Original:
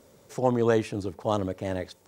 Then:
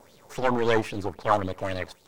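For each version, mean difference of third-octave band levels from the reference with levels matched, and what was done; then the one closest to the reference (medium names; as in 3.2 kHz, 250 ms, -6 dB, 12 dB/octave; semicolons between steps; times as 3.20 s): 3.5 dB: partial rectifier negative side -12 dB; sweeping bell 3.7 Hz 770–4300 Hz +14 dB; trim +3 dB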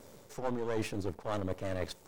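6.5 dB: partial rectifier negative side -12 dB; reverse; compression 6:1, threshold -36 dBFS, peak gain reduction 15 dB; reverse; trim +5.5 dB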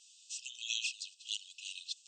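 23.5 dB: touch-sensitive flanger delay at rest 10.2 ms, full sweep at -19.5 dBFS; brick-wall FIR band-pass 2.5–8.6 kHz; trim +10 dB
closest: first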